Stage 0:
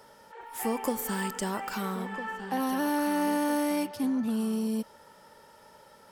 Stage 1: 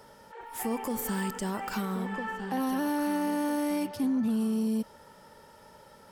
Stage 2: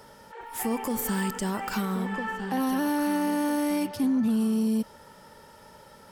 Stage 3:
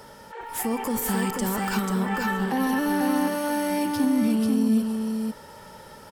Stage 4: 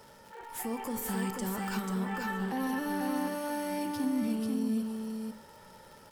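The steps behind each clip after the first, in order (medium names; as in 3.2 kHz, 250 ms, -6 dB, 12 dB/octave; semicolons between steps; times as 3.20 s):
bass shelf 250 Hz +7 dB; peak limiter -22.5 dBFS, peak gain reduction 8.5 dB
peaking EQ 590 Hz -2 dB 1.9 oct; trim +4 dB
peak limiter -22.5 dBFS, peak gain reduction 4 dB; delay 489 ms -4 dB; trim +4.5 dB
crackle 130 per s -36 dBFS; on a send at -14 dB: reverberation RT60 0.35 s, pre-delay 6 ms; on the sum: trim -9 dB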